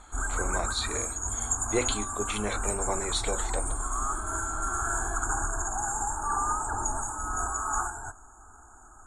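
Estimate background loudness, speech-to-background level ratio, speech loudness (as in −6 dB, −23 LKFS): −30.5 LKFS, −3.0 dB, −33.5 LKFS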